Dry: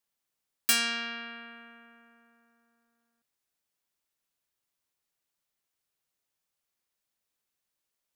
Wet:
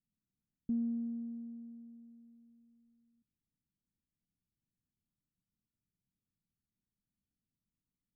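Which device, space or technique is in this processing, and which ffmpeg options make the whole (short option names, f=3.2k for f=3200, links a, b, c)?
the neighbour's flat through the wall: -af "lowpass=f=240:w=0.5412,lowpass=f=240:w=1.3066,equalizer=f=190:t=o:w=0.77:g=3,volume=10dB"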